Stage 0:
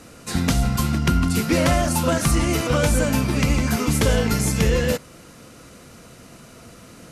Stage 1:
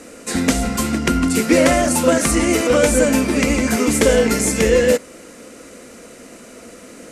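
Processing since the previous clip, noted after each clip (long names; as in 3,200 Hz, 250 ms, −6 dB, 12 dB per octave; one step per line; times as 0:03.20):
graphic EQ with 10 bands 125 Hz −11 dB, 250 Hz +9 dB, 500 Hz +10 dB, 2,000 Hz +8 dB, 8,000 Hz +10 dB
level −2 dB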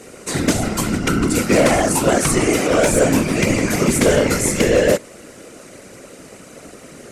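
random phases in short frames
gain into a clipping stage and back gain 7 dB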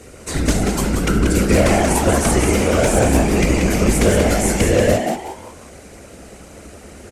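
sub-octave generator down 2 octaves, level +3 dB
on a send: echo with shifted repeats 184 ms, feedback 32%, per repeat +140 Hz, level −5.5 dB
on the sum: level −2.5 dB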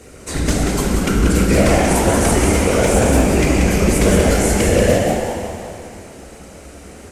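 bit-depth reduction 12 bits, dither none
dense smooth reverb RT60 2.7 s, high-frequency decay 0.95×, DRR 2 dB
level −1 dB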